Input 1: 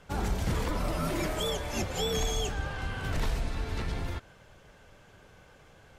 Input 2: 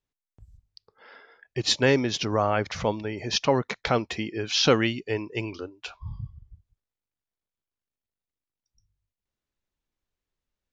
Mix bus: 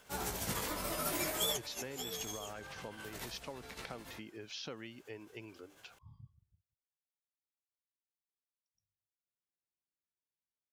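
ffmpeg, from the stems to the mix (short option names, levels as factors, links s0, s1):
-filter_complex "[0:a]aemphasis=mode=production:type=bsi,tremolo=f=14:d=0.45,flanger=delay=15.5:depth=5.5:speed=0.56,volume=1.06[s0];[1:a]highpass=110,acompressor=threshold=0.0447:ratio=4,volume=0.158,asplit=2[s1][s2];[s2]apad=whole_len=263987[s3];[s0][s3]sidechaincompress=threshold=0.00178:ratio=4:attack=6.7:release=207[s4];[s4][s1]amix=inputs=2:normalize=0"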